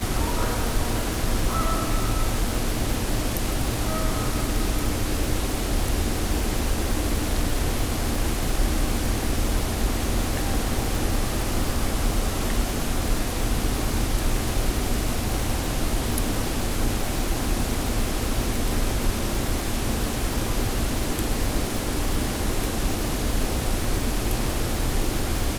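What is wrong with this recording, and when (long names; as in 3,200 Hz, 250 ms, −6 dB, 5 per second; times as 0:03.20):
surface crackle 340 per second −28 dBFS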